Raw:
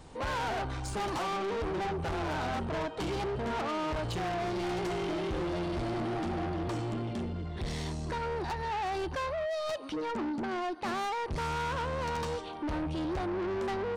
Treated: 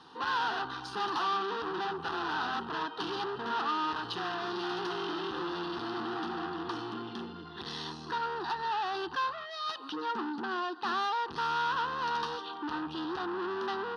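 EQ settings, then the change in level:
band-pass filter 390–5,900 Hz
phaser with its sweep stopped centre 2,200 Hz, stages 6
+6.0 dB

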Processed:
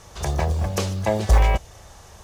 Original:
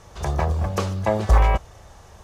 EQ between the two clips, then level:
dynamic equaliser 1,200 Hz, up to −7 dB, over −40 dBFS, Q 2
high-shelf EQ 2,800 Hz +7 dB
0.0 dB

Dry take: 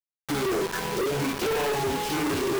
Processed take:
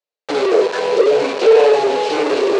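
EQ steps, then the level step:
high-frequency loss of the air 65 metres
loudspeaker in its box 340–8,500 Hz, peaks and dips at 460 Hz +10 dB, 2,600 Hz +4 dB, 4,200 Hz +6 dB
parametric band 590 Hz +11 dB 0.78 octaves
+5.5 dB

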